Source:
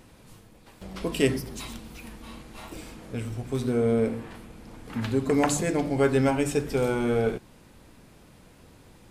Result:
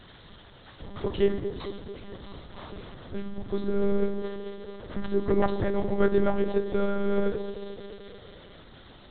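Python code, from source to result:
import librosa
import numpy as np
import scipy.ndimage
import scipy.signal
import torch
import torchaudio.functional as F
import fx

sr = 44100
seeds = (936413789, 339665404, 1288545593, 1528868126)

y = x + 0.5 * 10.0 ** (-27.0 / 20.0) * np.diff(np.sign(x), prepend=np.sign(x[:1]))
y = fx.peak_eq(y, sr, hz=2500.0, db=-14.5, octaves=0.39)
y = fx.echo_banded(y, sr, ms=220, feedback_pct=64, hz=450.0, wet_db=-10)
y = fx.lpc_monotone(y, sr, seeds[0], pitch_hz=200.0, order=10)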